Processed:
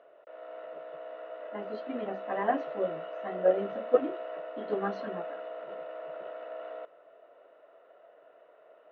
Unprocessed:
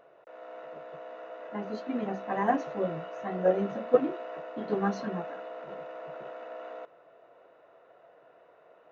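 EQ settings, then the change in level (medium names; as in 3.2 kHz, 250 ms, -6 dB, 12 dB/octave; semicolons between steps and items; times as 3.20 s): cabinet simulation 210–4500 Hz, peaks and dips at 290 Hz +3 dB, 420 Hz +4 dB, 610 Hz +9 dB, 1.3 kHz +5 dB, 1.9 kHz +4 dB, 3.1 kHz +7 dB; -5.5 dB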